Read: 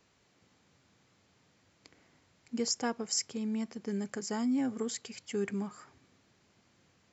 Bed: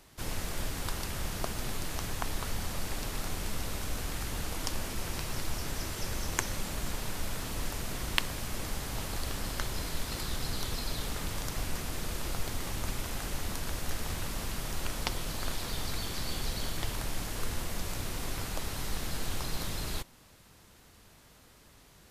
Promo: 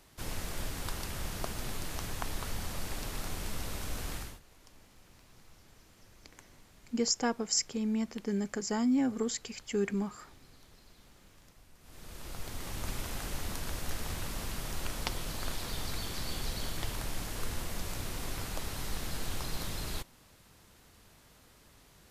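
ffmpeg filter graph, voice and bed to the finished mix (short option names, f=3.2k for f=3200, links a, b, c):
-filter_complex "[0:a]adelay=4400,volume=2.5dB[a];[1:a]volume=20.5dB,afade=t=out:st=4.14:d=0.26:silence=0.0749894,afade=t=in:st=11.79:d=1.16:silence=0.0707946[b];[a][b]amix=inputs=2:normalize=0"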